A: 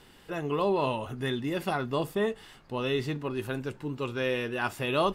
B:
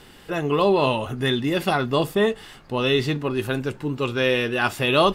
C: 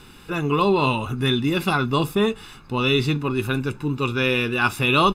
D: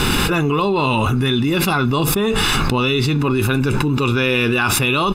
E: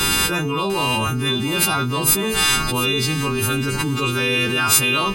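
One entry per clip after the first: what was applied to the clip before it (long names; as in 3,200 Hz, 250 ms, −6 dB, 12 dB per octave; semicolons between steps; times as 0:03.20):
notch filter 960 Hz, Q 23; dynamic equaliser 3,700 Hz, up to +4 dB, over −45 dBFS, Q 1.2; level +8 dB
comb filter 0.8 ms, depth 59%
envelope flattener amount 100%; level −2.5 dB
every partial snapped to a pitch grid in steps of 2 semitones; feedback echo at a low word length 699 ms, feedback 35%, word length 6 bits, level −13 dB; level −4.5 dB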